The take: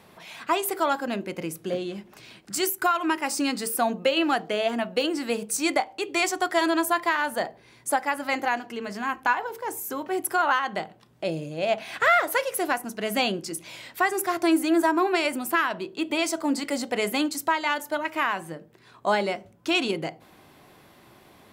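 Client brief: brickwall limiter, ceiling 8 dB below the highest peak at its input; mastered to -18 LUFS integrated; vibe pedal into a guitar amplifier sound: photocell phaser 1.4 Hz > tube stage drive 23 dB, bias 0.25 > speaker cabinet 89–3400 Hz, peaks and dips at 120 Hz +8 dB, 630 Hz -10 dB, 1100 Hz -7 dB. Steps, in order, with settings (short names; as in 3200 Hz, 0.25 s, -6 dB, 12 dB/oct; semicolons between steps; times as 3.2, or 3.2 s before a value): limiter -19.5 dBFS; photocell phaser 1.4 Hz; tube stage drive 23 dB, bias 0.25; speaker cabinet 89–3400 Hz, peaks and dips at 120 Hz +8 dB, 630 Hz -10 dB, 1100 Hz -7 dB; gain +19 dB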